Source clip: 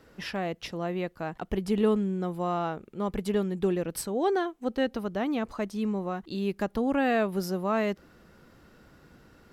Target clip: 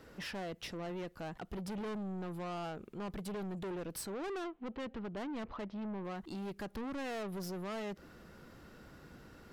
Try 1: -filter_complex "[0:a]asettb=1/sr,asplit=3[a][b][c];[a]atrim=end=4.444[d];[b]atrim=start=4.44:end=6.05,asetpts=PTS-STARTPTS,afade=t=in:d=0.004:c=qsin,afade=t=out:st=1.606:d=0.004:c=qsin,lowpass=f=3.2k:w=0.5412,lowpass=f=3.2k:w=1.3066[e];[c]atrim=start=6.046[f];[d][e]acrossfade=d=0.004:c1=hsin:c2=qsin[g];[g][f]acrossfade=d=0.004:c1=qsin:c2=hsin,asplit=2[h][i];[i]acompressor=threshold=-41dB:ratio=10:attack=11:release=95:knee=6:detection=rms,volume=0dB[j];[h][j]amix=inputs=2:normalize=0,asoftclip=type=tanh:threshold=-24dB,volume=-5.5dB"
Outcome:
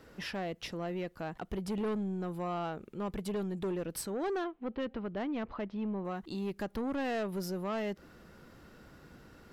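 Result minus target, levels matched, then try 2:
soft clip: distortion -6 dB
-filter_complex "[0:a]asettb=1/sr,asplit=3[a][b][c];[a]atrim=end=4.444[d];[b]atrim=start=4.44:end=6.05,asetpts=PTS-STARTPTS,afade=t=in:d=0.004:c=qsin,afade=t=out:st=1.606:d=0.004:c=qsin,lowpass=f=3.2k:w=0.5412,lowpass=f=3.2k:w=1.3066[e];[c]atrim=start=6.046[f];[d][e]acrossfade=d=0.004:c1=hsin:c2=qsin[g];[g][f]acrossfade=d=0.004:c1=qsin:c2=hsin,asplit=2[h][i];[i]acompressor=threshold=-41dB:ratio=10:attack=11:release=95:knee=6:detection=rms,volume=0dB[j];[h][j]amix=inputs=2:normalize=0,asoftclip=type=tanh:threshold=-32.5dB,volume=-5.5dB"

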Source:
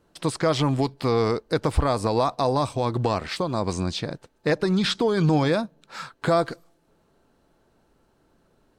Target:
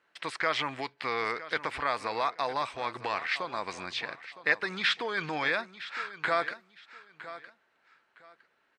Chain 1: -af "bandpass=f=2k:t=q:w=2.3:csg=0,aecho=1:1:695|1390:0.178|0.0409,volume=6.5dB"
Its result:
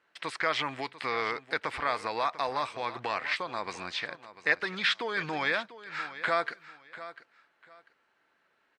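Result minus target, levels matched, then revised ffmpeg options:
echo 0.266 s early
-af "bandpass=f=2k:t=q:w=2.3:csg=0,aecho=1:1:961|1922:0.178|0.0409,volume=6.5dB"

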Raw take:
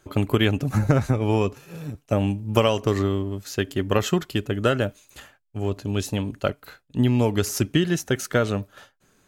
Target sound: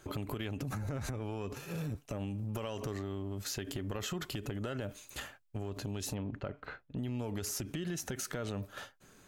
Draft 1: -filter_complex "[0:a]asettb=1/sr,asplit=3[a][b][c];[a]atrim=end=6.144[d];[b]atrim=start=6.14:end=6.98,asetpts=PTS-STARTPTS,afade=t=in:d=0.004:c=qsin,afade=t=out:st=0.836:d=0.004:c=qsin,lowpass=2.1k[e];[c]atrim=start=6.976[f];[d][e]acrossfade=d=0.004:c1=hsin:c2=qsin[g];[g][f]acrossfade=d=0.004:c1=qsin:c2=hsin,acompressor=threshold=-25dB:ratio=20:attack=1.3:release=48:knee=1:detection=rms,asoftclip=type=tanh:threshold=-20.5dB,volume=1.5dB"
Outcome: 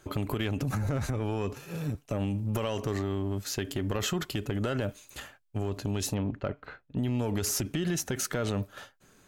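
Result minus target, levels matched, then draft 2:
compressor: peak gain reduction -8.5 dB
-filter_complex "[0:a]asettb=1/sr,asplit=3[a][b][c];[a]atrim=end=6.144[d];[b]atrim=start=6.14:end=6.98,asetpts=PTS-STARTPTS,afade=t=in:d=0.004:c=qsin,afade=t=out:st=0.836:d=0.004:c=qsin,lowpass=2.1k[e];[c]atrim=start=6.976[f];[d][e]acrossfade=d=0.004:c1=hsin:c2=qsin[g];[g][f]acrossfade=d=0.004:c1=qsin:c2=hsin,acompressor=threshold=-34dB:ratio=20:attack=1.3:release=48:knee=1:detection=rms,asoftclip=type=tanh:threshold=-20.5dB,volume=1.5dB"

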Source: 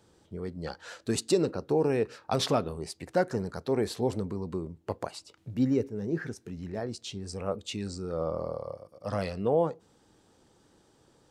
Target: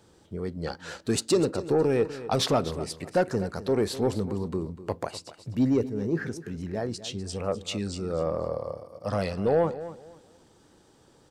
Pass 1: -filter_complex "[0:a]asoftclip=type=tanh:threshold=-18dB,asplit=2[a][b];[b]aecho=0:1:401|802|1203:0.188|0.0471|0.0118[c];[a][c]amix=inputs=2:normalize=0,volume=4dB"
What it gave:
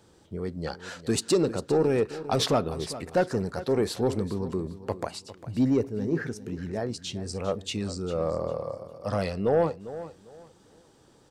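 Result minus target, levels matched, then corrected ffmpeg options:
echo 0.152 s late
-filter_complex "[0:a]asoftclip=type=tanh:threshold=-18dB,asplit=2[a][b];[b]aecho=0:1:249|498|747:0.188|0.0471|0.0118[c];[a][c]amix=inputs=2:normalize=0,volume=4dB"

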